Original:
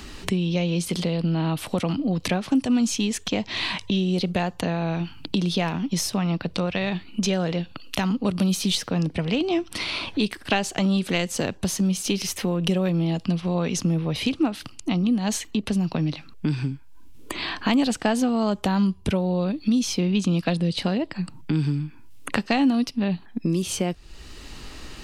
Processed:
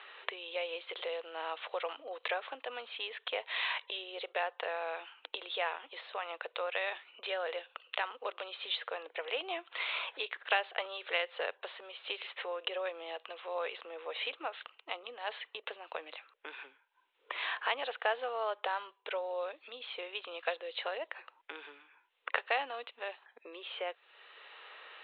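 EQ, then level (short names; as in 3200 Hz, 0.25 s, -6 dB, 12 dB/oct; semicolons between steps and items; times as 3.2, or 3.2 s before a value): elliptic high-pass 470 Hz, stop band 60 dB; steep low-pass 3800 Hz 96 dB/oct; bell 1600 Hz +5 dB 1.4 oct; -8.0 dB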